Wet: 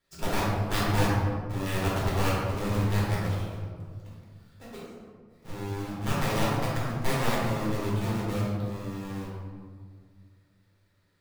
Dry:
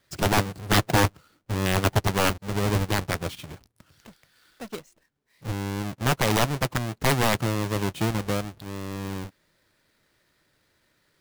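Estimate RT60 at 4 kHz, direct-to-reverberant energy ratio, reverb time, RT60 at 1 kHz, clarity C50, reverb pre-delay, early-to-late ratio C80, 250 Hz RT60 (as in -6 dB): 0.85 s, -7.5 dB, 1.9 s, 1.8 s, -2.0 dB, 3 ms, 1.0 dB, 2.4 s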